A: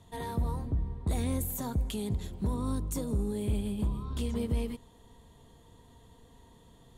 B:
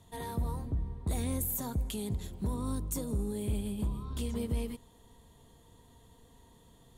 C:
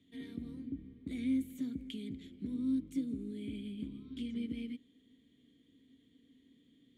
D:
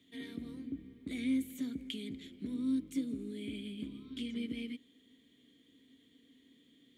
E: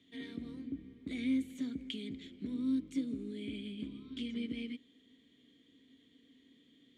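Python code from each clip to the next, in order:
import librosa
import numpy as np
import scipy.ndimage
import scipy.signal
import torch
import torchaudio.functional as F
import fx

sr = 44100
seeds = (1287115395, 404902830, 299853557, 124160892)

y1 = fx.high_shelf(x, sr, hz=7800.0, db=7.5)
y1 = y1 * librosa.db_to_amplitude(-2.5)
y2 = fx.vowel_filter(y1, sr, vowel='i')
y2 = y2 * librosa.db_to_amplitude(7.0)
y3 = fx.low_shelf(y2, sr, hz=290.0, db=-11.5)
y3 = y3 * librosa.db_to_amplitude(6.5)
y4 = scipy.signal.sosfilt(scipy.signal.butter(2, 6700.0, 'lowpass', fs=sr, output='sos'), y3)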